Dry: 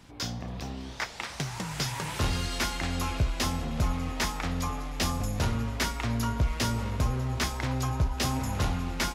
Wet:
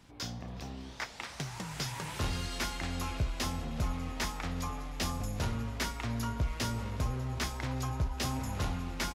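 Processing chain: echo from a far wall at 63 m, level -21 dB; trim -5.5 dB

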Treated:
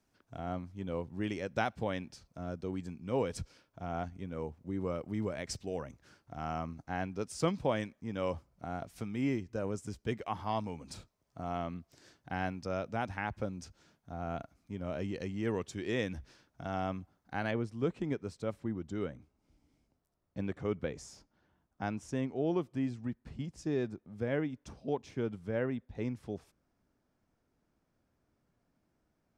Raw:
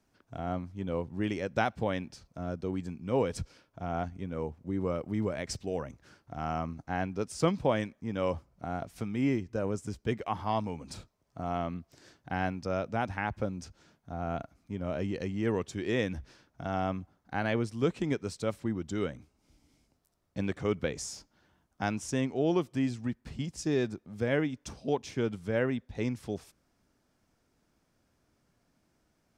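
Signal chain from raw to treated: treble shelf 2.5 kHz +2 dB, from 17.51 s -9 dB; trim -4 dB

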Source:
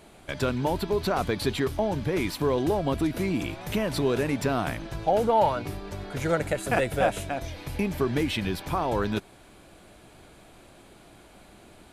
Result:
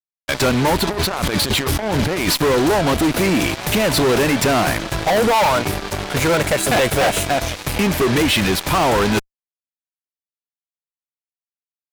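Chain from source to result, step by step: bass shelf 430 Hz -6 dB; 0.87–2.35 s: compressor with a negative ratio -36 dBFS, ratio -1; fuzz box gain 36 dB, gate -41 dBFS

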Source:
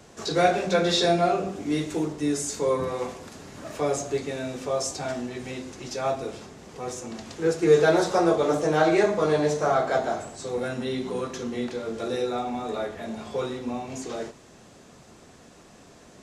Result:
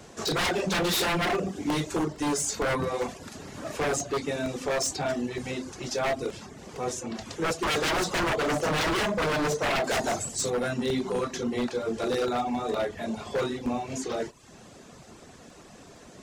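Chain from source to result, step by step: reverb removal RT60 0.56 s; 9.84–10.50 s: tone controls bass +4 dB, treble +12 dB; wavefolder -24 dBFS; crackling interface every 0.46 s, samples 64, repeat, from 0.78 s; trim +3 dB

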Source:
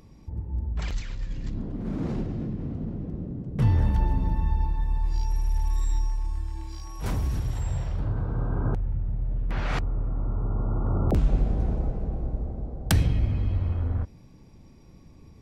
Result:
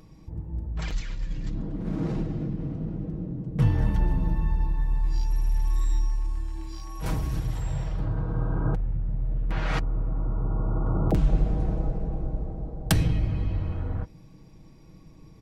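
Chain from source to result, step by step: comb 6.3 ms, depth 48%

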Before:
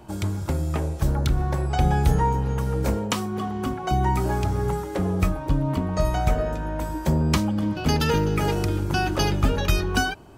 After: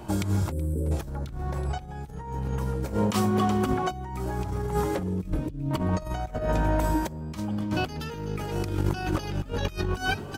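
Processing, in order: 0.52–0.91 s: spectral selection erased 560–7600 Hz; 5.03–5.71 s: FFT filter 360 Hz 0 dB, 1 kHz -21 dB, 2.5 kHz -5 dB; frequency-shifting echo 374 ms, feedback 43%, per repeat +52 Hz, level -20 dB; compressor with a negative ratio -27 dBFS, ratio -0.5

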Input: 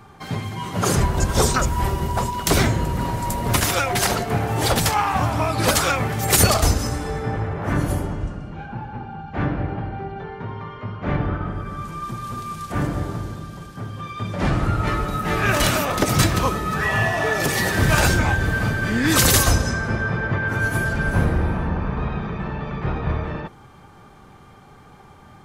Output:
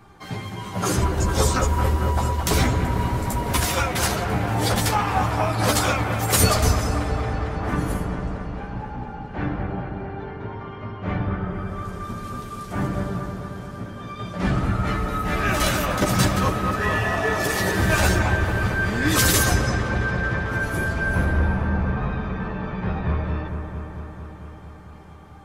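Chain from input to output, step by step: chorus voices 6, 0.16 Hz, delay 13 ms, depth 3.6 ms; feedback echo behind a low-pass 224 ms, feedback 76%, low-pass 2.2 kHz, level -7 dB

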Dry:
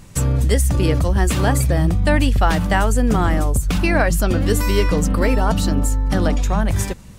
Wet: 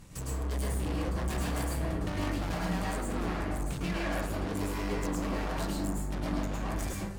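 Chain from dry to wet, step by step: valve stage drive 28 dB, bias 0.35; 3.22–4.80 s: treble shelf 7 kHz -5.5 dB; plate-style reverb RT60 0.61 s, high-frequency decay 0.5×, pre-delay 95 ms, DRR -4 dB; trim -8 dB

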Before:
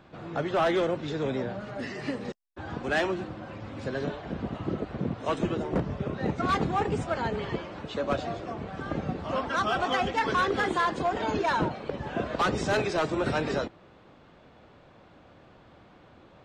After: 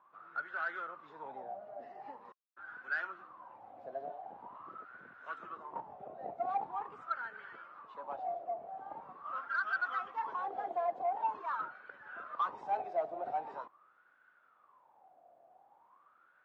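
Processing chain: wah-wah 0.44 Hz 690–1500 Hz, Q 14; saturation -27 dBFS, distortion -24 dB; trim +4.5 dB

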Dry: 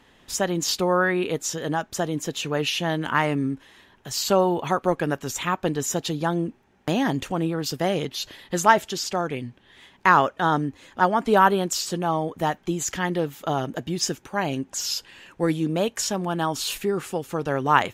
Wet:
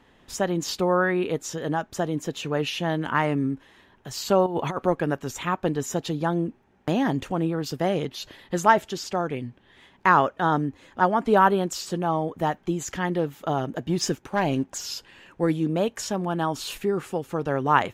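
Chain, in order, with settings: treble shelf 2.4 kHz -7.5 dB; 4.46–4.86 s: compressor with a negative ratio -26 dBFS, ratio -0.5; 13.89–14.78 s: waveshaping leveller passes 1

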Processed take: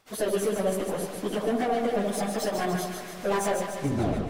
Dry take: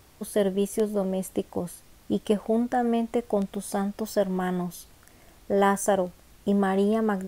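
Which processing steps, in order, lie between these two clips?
tape stop on the ending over 1.04 s; gate with hold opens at -44 dBFS; band-stop 900 Hz, Q 13; in parallel at +1 dB: compression 10:1, threshold -35 dBFS, peak gain reduction 18 dB; on the sum: added noise brown -64 dBFS; overdrive pedal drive 24 dB, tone 4.4 kHz, clips at -9 dBFS; echo whose repeats swap between lows and highs 123 ms, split 810 Hz, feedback 77%, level -3 dB; plain phase-vocoder stretch 0.59×; reverberation RT60 1.9 s, pre-delay 92 ms, DRR 17 dB; trim -7.5 dB

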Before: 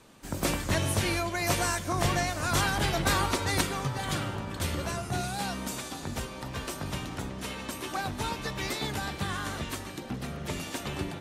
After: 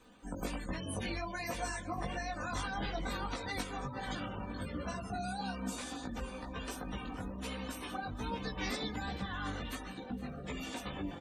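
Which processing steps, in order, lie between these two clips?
spectral gate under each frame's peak -20 dB strong; comb 4 ms, depth 53%; compression, threshold -30 dBFS, peak gain reduction 9.5 dB; chorus voices 4, 1.3 Hz, delay 18 ms, depth 3 ms; crackle 210 per s -62 dBFS; on a send: delay 464 ms -20 dB; on the sum: trim -2 dB

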